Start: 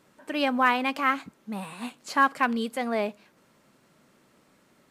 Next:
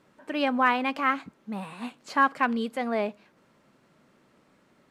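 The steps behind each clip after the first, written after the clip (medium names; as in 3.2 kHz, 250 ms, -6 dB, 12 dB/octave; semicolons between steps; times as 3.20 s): low-pass 3.5 kHz 6 dB/octave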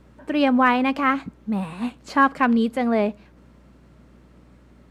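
bass shelf 360 Hz +10 dB; hum 60 Hz, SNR 30 dB; trim +3 dB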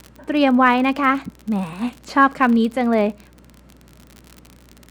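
crackle 45 per s -30 dBFS; trim +3 dB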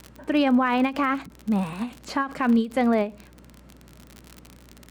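peak limiter -11 dBFS, peak gain reduction 9.5 dB; endings held to a fixed fall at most 200 dB/s; trim -1.5 dB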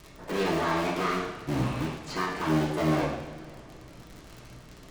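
cycle switcher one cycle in 3, inverted; saturation -24.5 dBFS, distortion -8 dB; reverberation, pre-delay 3 ms, DRR -6 dB; trim -6 dB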